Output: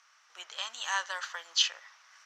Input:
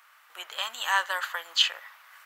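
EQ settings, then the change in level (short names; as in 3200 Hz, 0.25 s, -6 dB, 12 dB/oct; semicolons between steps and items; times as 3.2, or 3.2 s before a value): synth low-pass 5800 Hz, resonance Q 6.5; -7.5 dB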